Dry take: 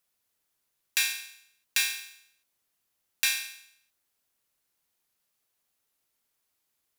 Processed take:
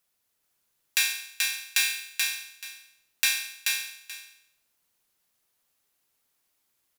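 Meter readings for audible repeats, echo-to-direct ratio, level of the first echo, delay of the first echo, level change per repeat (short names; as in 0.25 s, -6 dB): 2, -3.0 dB, -3.0 dB, 0.432 s, -14.0 dB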